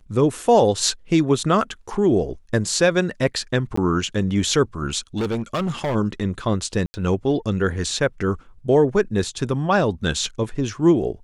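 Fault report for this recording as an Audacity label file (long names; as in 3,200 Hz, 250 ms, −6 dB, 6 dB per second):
3.760000	3.770000	drop-out 14 ms
5.160000	5.960000	clipping −19.5 dBFS
6.860000	6.940000	drop-out 80 ms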